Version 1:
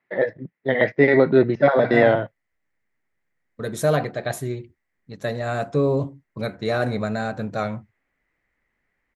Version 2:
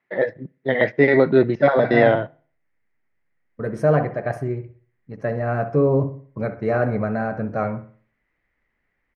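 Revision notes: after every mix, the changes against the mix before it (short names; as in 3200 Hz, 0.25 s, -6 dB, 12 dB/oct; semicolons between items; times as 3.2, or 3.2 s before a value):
second voice: add running mean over 12 samples; reverb: on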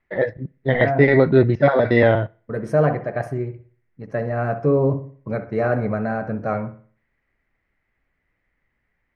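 first voice: remove HPF 190 Hz 12 dB/oct; second voice: entry -1.10 s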